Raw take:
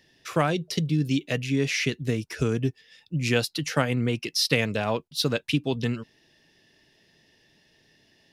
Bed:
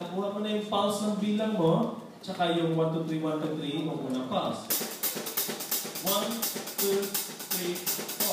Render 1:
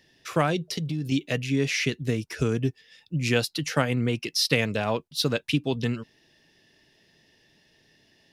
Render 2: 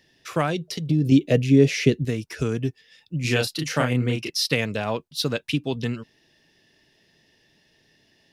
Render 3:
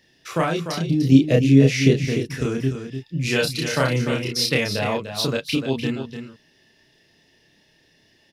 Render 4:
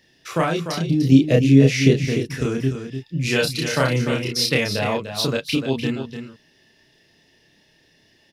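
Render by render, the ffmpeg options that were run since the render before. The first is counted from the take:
-filter_complex "[0:a]asettb=1/sr,asplit=3[a][b][c];[a]atrim=end=0.624[d];[b]atrim=start=0.62:end=1.12,asetpts=PTS-STARTPTS,afade=t=in:d=0.004:c=qsin,afade=t=out:st=0.496:d=0.004:c=qsin,acompressor=threshold=-25dB:ratio=6:attack=3.2:release=140:knee=1:detection=peak[e];[c]atrim=start=1.116[f];[d][e]acrossfade=d=0.004:c1=hsin:c2=qsin[g];[g][f]acrossfade=d=0.004:c1=qsin:c2=hsin"
-filter_complex "[0:a]asettb=1/sr,asplit=3[a][b][c];[a]atrim=end=0.894[d];[b]atrim=start=0.89:end=2.05,asetpts=PTS-STARTPTS,afade=t=in:d=0.004:c=qsin,afade=t=out:st=1.156:d=0.004:c=qsin,lowshelf=f=740:t=q:w=1.5:g=8.5[e];[c]atrim=start=2.046[f];[d][e]acrossfade=d=0.004:c1=hsin:c2=qsin[g];[g][f]acrossfade=d=0.004:c1=qsin:c2=hsin,asettb=1/sr,asplit=3[h][i][j];[h]atrim=end=3.214[k];[i]atrim=start=3.21:end=4.3,asetpts=PTS-STARTPTS,afade=t=in:d=0.004:c=qsin,afade=t=out:st=1.086:d=0.004:c=qsin,asplit=2[l][m];[m]adelay=32,volume=-3dB[n];[l][n]amix=inputs=2:normalize=0,atrim=end_sample=48069[o];[j]atrim=start=4.296[p];[k][o]acrossfade=d=0.004:c1=hsin:c2=qsin[q];[q][p]acrossfade=d=0.004:c1=qsin:c2=hsin"
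-filter_complex "[0:a]asplit=2[a][b];[b]adelay=30,volume=-2dB[c];[a][c]amix=inputs=2:normalize=0,asplit=2[d][e];[e]aecho=0:1:297:0.376[f];[d][f]amix=inputs=2:normalize=0"
-af "volume=1dB,alimiter=limit=-2dB:level=0:latency=1"

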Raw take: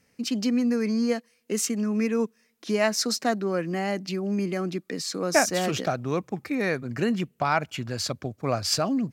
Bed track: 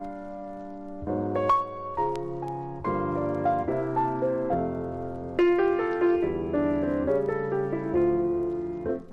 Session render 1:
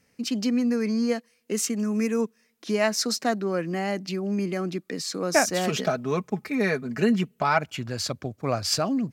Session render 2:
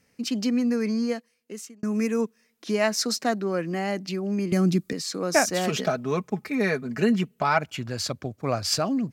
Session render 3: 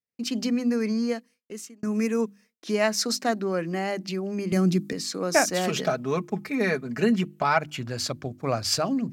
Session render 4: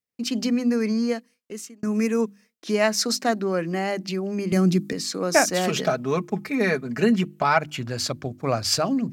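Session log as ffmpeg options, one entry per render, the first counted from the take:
-filter_complex "[0:a]asettb=1/sr,asplit=3[a][b][c];[a]atrim=end=1.794[d];[b]atrim=start=1.79:end=2.21,asetpts=PTS-STARTPTS,afade=t=in:d=0.004:c=qsin,afade=t=out:st=0.416:d=0.004:c=qsin,highshelf=f=5.6k:t=q:w=1.5:g=7[e];[c]atrim=start=2.206[f];[d][e]acrossfade=d=0.004:c1=hsin:c2=qsin[g];[g][f]acrossfade=d=0.004:c1=qsin:c2=hsin,asettb=1/sr,asplit=3[h][i][j];[h]atrim=end=5.674[k];[i]atrim=start=5.67:end=7.58,asetpts=PTS-STARTPTS,afade=t=in:d=0.004:c=qsin,afade=t=out:st=1.906:d=0.004:c=qsin,aecho=1:1:4.7:0.65,atrim=end_sample=84231[l];[j]atrim=start=7.576[m];[k][l]acrossfade=d=0.004:c1=hsin:c2=qsin[n];[n][m]acrossfade=d=0.004:c1=qsin:c2=hsin"
-filter_complex "[0:a]asettb=1/sr,asplit=3[a][b][c];[a]atrim=end=4.524[d];[b]atrim=start=4.52:end=4.93,asetpts=PTS-STARTPTS,afade=t=in:d=0.004:c=qsin,afade=t=out:st=0.406:d=0.004:c=qsin,bass=f=250:g=15,treble=f=4k:g=10[e];[c]atrim=start=4.926[f];[d][e]acrossfade=d=0.004:c1=hsin:c2=qsin[g];[g][f]acrossfade=d=0.004:c1=qsin:c2=hsin,asplit=2[h][i];[h]atrim=end=1.83,asetpts=PTS-STARTPTS,afade=t=out:st=0.89:d=0.94[j];[i]atrim=start=1.83,asetpts=PTS-STARTPTS,afade=t=in:d=0.004:c=hsin[k];[j][k]concat=n=2:v=0:a=1"
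-af "bandreject=f=50:t=h:w=6,bandreject=f=100:t=h:w=6,bandreject=f=150:t=h:w=6,bandreject=f=200:t=h:w=6,bandreject=f=250:t=h:w=6,bandreject=f=300:t=h:w=6,bandreject=f=350:t=h:w=6,agate=range=-33dB:threshold=-48dB:ratio=3:detection=peak"
-af "volume=2.5dB"

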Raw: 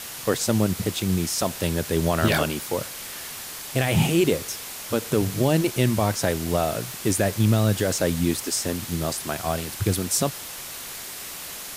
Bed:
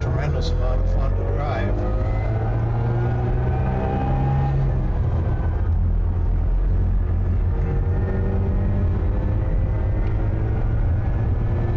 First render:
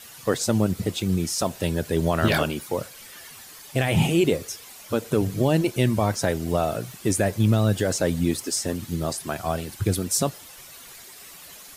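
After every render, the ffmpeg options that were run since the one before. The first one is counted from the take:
-af "afftdn=nr=11:nf=-36"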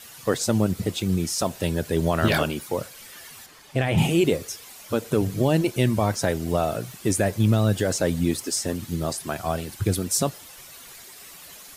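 -filter_complex "[0:a]asettb=1/sr,asplit=3[a][b][c];[a]atrim=end=3.464[d];[b]atrim=start=3.46:end=3.98,asetpts=PTS-STARTPTS,afade=t=in:d=0.004:c=qsin,afade=t=out:st=0.516:d=0.004:c=qsin,lowpass=f=3k:p=1[e];[c]atrim=start=3.976[f];[d][e]acrossfade=d=0.004:c1=hsin:c2=qsin[g];[g][f]acrossfade=d=0.004:c1=qsin:c2=hsin"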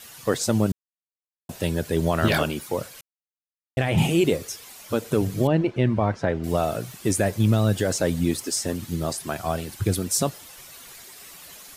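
-filter_complex "[0:a]asettb=1/sr,asplit=3[a][b][c];[a]atrim=end=5.474[d];[b]atrim=start=5.47:end=6.44,asetpts=PTS-STARTPTS,afade=t=in:d=0.004:c=qsin,afade=t=out:st=0.966:d=0.004:c=qsin,lowpass=2.3k[e];[c]atrim=start=6.436[f];[d][e]acrossfade=d=0.004:c1=hsin:c2=qsin[g];[g][f]acrossfade=d=0.004:c1=qsin:c2=hsin,asplit=5[h][i][j][k][l];[h]atrim=end=0.72,asetpts=PTS-STARTPTS,afade=t=out:st=0.716:d=0.004:c=hsin[m];[i]atrim=start=0.72:end=1.49,asetpts=PTS-STARTPTS,volume=0[n];[j]atrim=start=1.49:end=3.01,asetpts=PTS-STARTPTS,afade=t=in:d=0.004:c=hsin,afade=t=out:st=1.516:d=0.004:c=hsin[o];[k]atrim=start=3.01:end=3.77,asetpts=PTS-STARTPTS,volume=0[p];[l]atrim=start=3.77,asetpts=PTS-STARTPTS,afade=t=in:d=0.004:c=hsin[q];[m][n][o][p][q]concat=n=5:v=0:a=1"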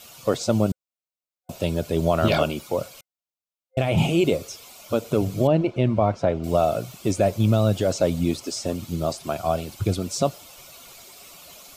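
-filter_complex "[0:a]acrossover=split=6500[a][b];[b]acompressor=threshold=-43dB:ratio=4:attack=1:release=60[c];[a][c]amix=inputs=2:normalize=0,superequalizer=8b=1.78:11b=0.355:16b=0.708"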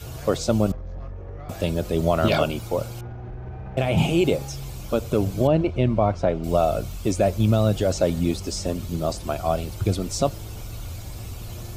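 -filter_complex "[1:a]volume=-14.5dB[a];[0:a][a]amix=inputs=2:normalize=0"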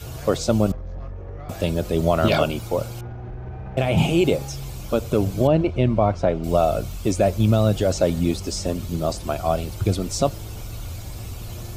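-af "volume=1.5dB"

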